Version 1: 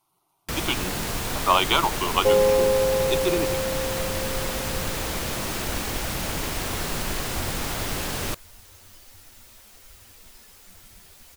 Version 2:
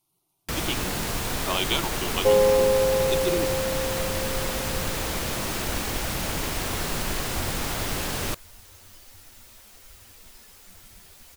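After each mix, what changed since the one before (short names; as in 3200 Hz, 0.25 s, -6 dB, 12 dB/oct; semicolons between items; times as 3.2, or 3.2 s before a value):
speech: add bell 1100 Hz -13 dB 1.8 oct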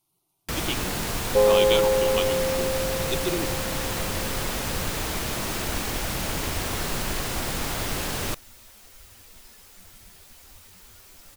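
second sound: entry -0.90 s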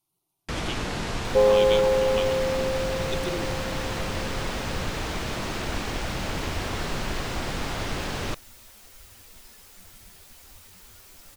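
speech -5.0 dB; first sound: add air absorption 88 m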